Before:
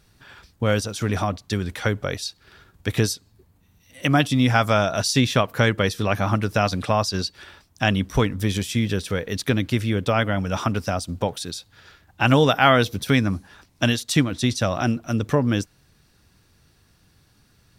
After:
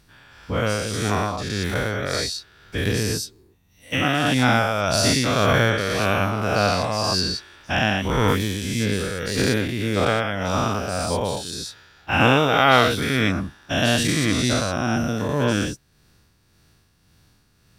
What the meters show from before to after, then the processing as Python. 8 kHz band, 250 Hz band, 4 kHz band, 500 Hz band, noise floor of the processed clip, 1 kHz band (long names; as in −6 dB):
+3.5 dB, −0.5 dB, +3.0 dB, +1.0 dB, −61 dBFS, +2.0 dB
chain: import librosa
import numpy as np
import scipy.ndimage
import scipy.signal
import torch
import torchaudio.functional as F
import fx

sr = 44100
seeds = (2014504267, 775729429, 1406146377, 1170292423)

y = fx.spec_dilate(x, sr, span_ms=240)
y = y * (1.0 - 0.45 / 2.0 + 0.45 / 2.0 * np.cos(2.0 * np.pi * 1.8 * (np.arange(len(y)) / sr)))
y = F.gain(torch.from_numpy(y), -4.0).numpy()